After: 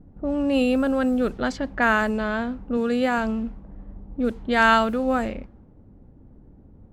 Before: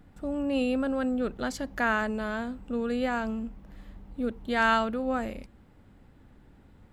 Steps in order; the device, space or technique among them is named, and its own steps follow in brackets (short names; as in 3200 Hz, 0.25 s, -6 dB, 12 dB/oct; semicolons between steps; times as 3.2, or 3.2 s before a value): cassette deck with a dynamic noise filter (white noise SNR 34 dB; low-pass opened by the level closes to 460 Hz, open at -24 dBFS); 2.77–3.18 HPF 90 Hz; gain +6.5 dB